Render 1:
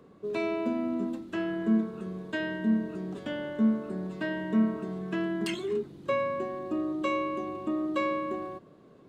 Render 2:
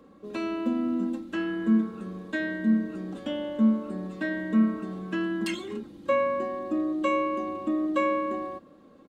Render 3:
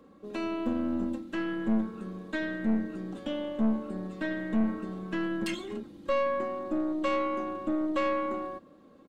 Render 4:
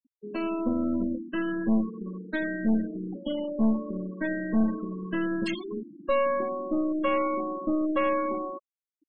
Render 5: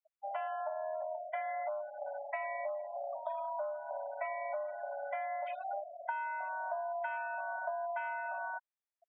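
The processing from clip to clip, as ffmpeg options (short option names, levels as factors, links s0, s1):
-af "aecho=1:1:3.7:0.67"
-af "aeval=exprs='(tanh(12.6*val(0)+0.5)-tanh(0.5))/12.6':c=same"
-af "afftfilt=real='re*gte(hypot(re,im),0.0224)':imag='im*gte(hypot(re,im),0.0224)':win_size=1024:overlap=0.75,volume=1.41"
-af "acompressor=threshold=0.02:ratio=12,highpass=f=190:t=q:w=0.5412,highpass=f=190:t=q:w=1.307,lowpass=f=2100:t=q:w=0.5176,lowpass=f=2100:t=q:w=0.7071,lowpass=f=2100:t=q:w=1.932,afreqshift=380"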